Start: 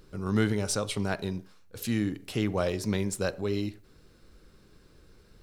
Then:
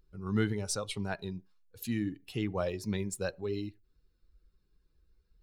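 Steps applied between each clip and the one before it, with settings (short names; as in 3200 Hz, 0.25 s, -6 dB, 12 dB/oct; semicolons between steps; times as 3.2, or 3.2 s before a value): per-bin expansion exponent 1.5; gain -2.5 dB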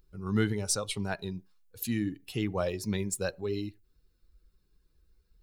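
high shelf 6300 Hz +6.5 dB; gain +2 dB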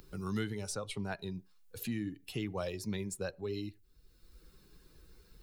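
three-band squash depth 70%; gain -6 dB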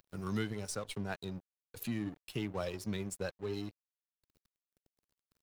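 crossover distortion -50 dBFS; gain +1 dB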